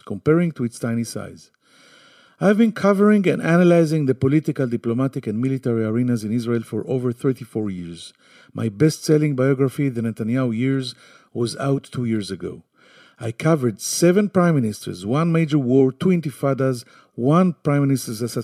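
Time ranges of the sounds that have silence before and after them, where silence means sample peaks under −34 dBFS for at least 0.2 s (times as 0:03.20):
0:02.41–0:08.09
0:08.55–0:10.92
0:11.36–0:12.58
0:13.21–0:16.82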